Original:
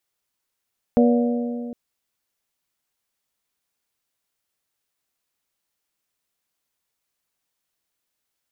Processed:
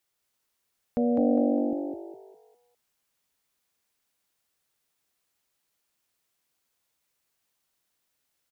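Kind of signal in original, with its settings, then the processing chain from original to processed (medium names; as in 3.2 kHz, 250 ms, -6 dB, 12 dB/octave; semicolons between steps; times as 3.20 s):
metal hit bell, length 0.76 s, lowest mode 240 Hz, modes 4, decay 2.57 s, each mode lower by 4 dB, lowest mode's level -13 dB
peak limiter -18 dBFS; frequency-shifting echo 203 ms, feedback 36%, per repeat +49 Hz, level -3 dB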